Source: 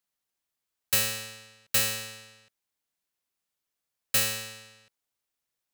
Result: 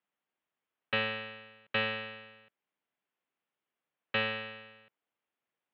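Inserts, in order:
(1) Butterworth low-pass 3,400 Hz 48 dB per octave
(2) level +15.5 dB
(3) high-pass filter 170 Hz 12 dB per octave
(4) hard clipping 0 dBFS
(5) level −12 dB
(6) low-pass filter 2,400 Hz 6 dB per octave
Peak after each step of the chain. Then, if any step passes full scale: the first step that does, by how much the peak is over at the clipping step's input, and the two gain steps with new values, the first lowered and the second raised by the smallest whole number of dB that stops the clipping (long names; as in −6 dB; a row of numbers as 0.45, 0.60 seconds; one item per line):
−20.5, −5.0, −4.5, −4.5, −16.5, −18.0 dBFS
no step passes full scale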